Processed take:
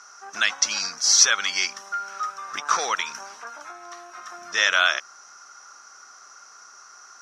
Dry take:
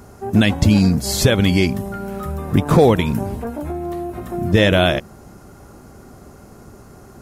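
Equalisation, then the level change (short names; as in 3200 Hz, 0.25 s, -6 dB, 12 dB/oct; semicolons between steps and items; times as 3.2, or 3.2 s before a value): resonant high-pass 1300 Hz, resonance Q 4; synth low-pass 5800 Hz, resonance Q 15; -5.5 dB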